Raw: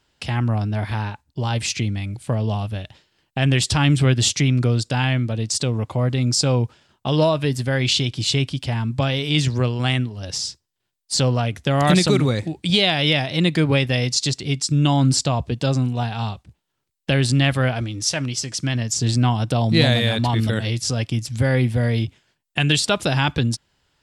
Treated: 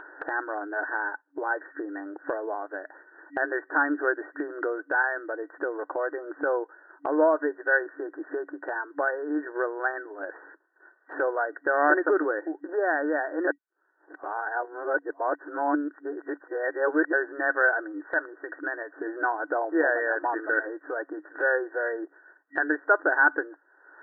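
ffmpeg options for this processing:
ffmpeg -i in.wav -filter_complex "[0:a]asplit=3[link_01][link_02][link_03];[link_01]atrim=end=13.472[link_04];[link_02]atrim=start=13.468:end=17.132,asetpts=PTS-STARTPTS,areverse[link_05];[link_03]atrim=start=17.128[link_06];[link_04][link_05]acrossfade=duration=0.004:curve1=hsin:curve2=hsin[link_07];[link_07][link_06]acrossfade=duration=0.004:curve1=hsin:curve2=hsin,afftfilt=real='re*between(b*sr/4096,290,1900)':imag='im*between(b*sr/4096,290,1900)':win_size=4096:overlap=0.75,equalizer=frequency=1500:width=7.9:gain=14.5,acompressor=mode=upward:threshold=-25dB:ratio=2.5,volume=-2.5dB" out.wav

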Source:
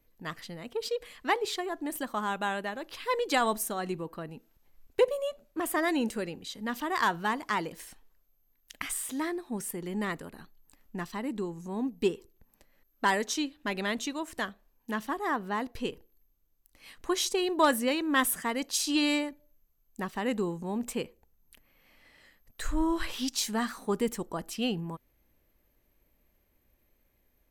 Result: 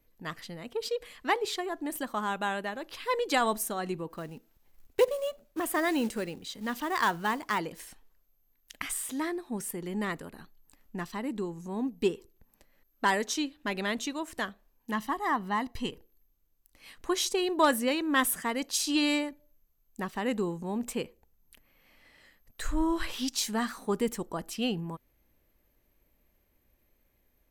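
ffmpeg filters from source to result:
ffmpeg -i in.wav -filter_complex "[0:a]asplit=3[link_01][link_02][link_03];[link_01]afade=type=out:start_time=4.09:duration=0.02[link_04];[link_02]acrusher=bits=5:mode=log:mix=0:aa=0.000001,afade=type=in:start_time=4.09:duration=0.02,afade=type=out:start_time=7.58:duration=0.02[link_05];[link_03]afade=type=in:start_time=7.58:duration=0.02[link_06];[link_04][link_05][link_06]amix=inputs=3:normalize=0,asettb=1/sr,asplit=3[link_07][link_08][link_09];[link_07]atrim=end=14.924[link_10];[link_08]atrim=start=14.92:end=15.91,asetpts=PTS-STARTPTS,afade=type=in:duration=0.004:curve=qsin,afade=type=out:start_time=0.986:duration=0.004:curve=qsin,aecho=1:1:1:0.51,atrim=end_sample=43659[link_11];[link_09]atrim=start=15.906[link_12];[link_10][link_11]acrossfade=duration=0.004:curve1=hsin:curve2=qsin[link_13];[link_13][link_12]acrossfade=duration=0.004:curve1=qsin:curve2=hsin" out.wav

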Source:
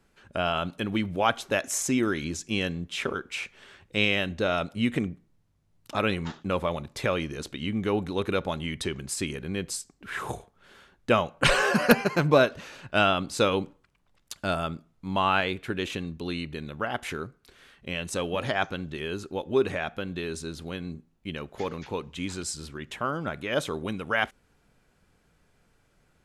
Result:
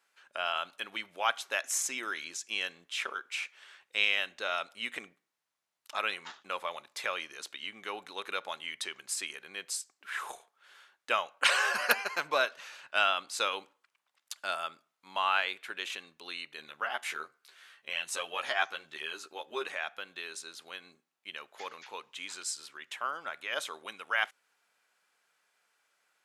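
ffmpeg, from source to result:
ffmpeg -i in.wav -filter_complex "[0:a]asettb=1/sr,asplit=3[link_01][link_02][link_03];[link_01]atrim=end=16.574[link_04];[link_02]atrim=start=16.57:end=19.68,asetpts=PTS-STARTPTS,afade=type=in:duration=0.004:curve=qsin,afade=type=out:start_time=3.106:duration=0.004:curve=qsin,asplit=2[link_05][link_06];[link_06]adelay=13,volume=-3dB[link_07];[link_05][link_07]amix=inputs=2:normalize=0,atrim=end_sample=137151[link_08];[link_03]atrim=start=19.676[link_09];[link_04][link_08]acrossfade=duration=0.004:curve1=hsin:curve2=qsin[link_10];[link_10][link_09]acrossfade=duration=0.004:curve1=qsin:curve2=hsin,highpass=980,volume=-2dB" out.wav

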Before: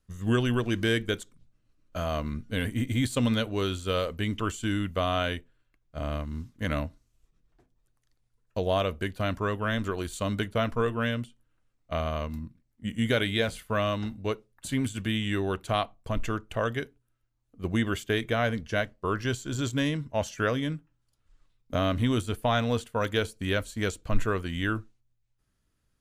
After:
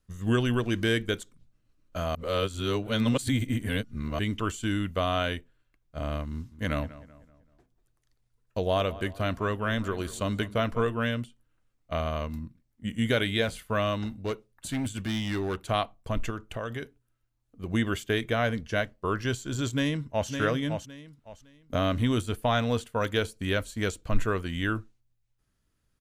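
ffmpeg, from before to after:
ffmpeg -i in.wav -filter_complex "[0:a]asettb=1/sr,asplit=3[link_01][link_02][link_03];[link_01]atrim=end=6.324[link_04];[link_02]atrim=start=6.32:end=10.84,asetpts=PTS-STARTPTS,afade=type=in:duration=0.004:curve=qsin,afade=type=out:start_time=4.516:duration=0.004:curve=qsin,asplit=2[link_05][link_06];[link_06]adelay=191,lowpass=frequency=2200:poles=1,volume=-16.5dB,asplit=2[link_07][link_08];[link_08]adelay=191,lowpass=frequency=2200:poles=1,volume=0.45,asplit=2[link_09][link_10];[link_10]adelay=191,lowpass=frequency=2200:poles=1,volume=0.45,asplit=2[link_11][link_12];[link_12]adelay=191,lowpass=frequency=2200:poles=1,volume=0.45[link_13];[link_05][link_07][link_09][link_11][link_13]amix=inputs=5:normalize=0,atrim=end_sample=199332[link_14];[link_03]atrim=start=10.836[link_15];[link_04][link_14]acrossfade=duration=0.004:curve1=hsin:curve2=qsin[link_16];[link_16][link_15]acrossfade=duration=0.004:curve1=qsin:curve2=hsin,asettb=1/sr,asplit=3[link_17][link_18][link_19];[link_17]atrim=end=14.044[link_20];[link_18]atrim=start=14.04:end=15.61,asetpts=PTS-STARTPTS,afade=type=in:duration=0.004:curve=qsin,afade=type=out:start_time=1.566:duration=0.004:curve=qsin,asoftclip=type=hard:threshold=-25.5dB[link_21];[link_19]atrim=start=15.606[link_22];[link_20][link_21]acrossfade=duration=0.004:curve1=hsin:curve2=qsin[link_23];[link_23][link_22]acrossfade=duration=0.004:curve1=qsin:curve2=hsin,asettb=1/sr,asplit=3[link_24][link_25][link_26];[link_24]atrim=end=16.304[link_27];[link_25]atrim=start=16.3:end=17.72,asetpts=PTS-STARTPTS,afade=type=in:duration=0.004:curve=qsin,afade=type=out:start_time=1.416:duration=0.004:curve=qsin,acompressor=threshold=-29dB:ratio=6:attack=3.2:release=140:knee=1:detection=peak[link_28];[link_26]atrim=start=17.716[link_29];[link_27][link_28]acrossfade=duration=0.004:curve1=hsin:curve2=qsin[link_30];[link_30][link_29]acrossfade=duration=0.004:curve1=qsin:curve2=hsin,asplit=2[link_31][link_32];[link_32]afade=type=in:start_time=19.72:duration=0.01,afade=type=out:start_time=20.29:duration=0.01,aecho=0:1:560|1120|1680:0.473151|0.118288|0.029572[link_33];[link_31][link_33]amix=inputs=2:normalize=0,asplit=3[link_34][link_35][link_36];[link_34]atrim=end=2.152[link_37];[link_35]atrim=start=2.148:end=4.192,asetpts=PTS-STARTPTS,areverse[link_38];[link_36]atrim=start=4.188[link_39];[link_37][link_38]acrossfade=duration=0.004:curve1=hsin:curve2=hsin[link_40];[link_40][link_39]acrossfade=duration=0.004:curve1=hsin:curve2=hsin" out.wav

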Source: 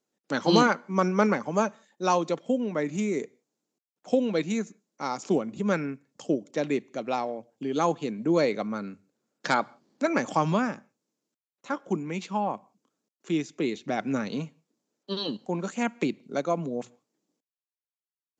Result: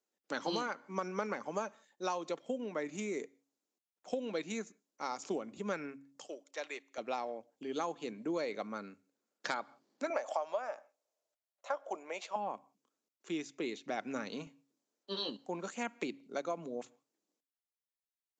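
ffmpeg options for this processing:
ffmpeg -i in.wav -filter_complex "[0:a]asettb=1/sr,asplit=3[link_01][link_02][link_03];[link_01]atrim=end=6.264[link_04];[link_02]atrim=start=6.26:end=6.98,asetpts=PTS-STARTPTS,afade=type=in:duration=0.004:curve=qsin,afade=type=out:start_time=0.716:duration=0.004:curve=qsin,highpass=760[link_05];[link_03]atrim=start=6.976[link_06];[link_04][link_05]acrossfade=duration=0.004:curve1=hsin:curve2=qsin[link_07];[link_07][link_06]acrossfade=duration=0.004:curve1=qsin:curve2=hsin,asettb=1/sr,asplit=3[link_08][link_09][link_10];[link_08]atrim=end=10.104[link_11];[link_09]atrim=start=10.1:end=12.36,asetpts=PTS-STARTPTS,afade=type=in:duration=0.004:curve=qsin,afade=type=out:start_time=2.256:duration=0.004:curve=qsin,highpass=frequency=620:width_type=q:width=5.5[link_12];[link_10]atrim=start=12.356[link_13];[link_11][link_12]acrossfade=duration=0.004:curve1=hsin:curve2=qsin[link_14];[link_14][link_13]acrossfade=duration=0.004:curve1=qsin:curve2=hsin,asettb=1/sr,asplit=3[link_15][link_16][link_17];[link_15]atrim=end=14.444[link_18];[link_16]atrim=start=14.44:end=15.3,asetpts=PTS-STARTPTS,afade=type=in:duration=0.004:curve=qsin,afade=type=out:start_time=0.856:duration=0.004:curve=qsin,asplit=2[link_19][link_20];[link_20]adelay=25,volume=-6.5dB[link_21];[link_19][link_21]amix=inputs=2:normalize=0,atrim=end_sample=37926[link_22];[link_17]atrim=start=15.296[link_23];[link_18][link_22]acrossfade=duration=0.004:curve1=hsin:curve2=qsin[link_24];[link_24][link_23]acrossfade=duration=0.004:curve1=qsin:curve2=hsin,equalizer=frequency=130:width_type=o:width=1.8:gain=-12.5,bandreject=frequency=138.3:width_type=h:width=4,bandreject=frequency=276.6:width_type=h:width=4,acompressor=threshold=-26dB:ratio=12,volume=-5.5dB" out.wav

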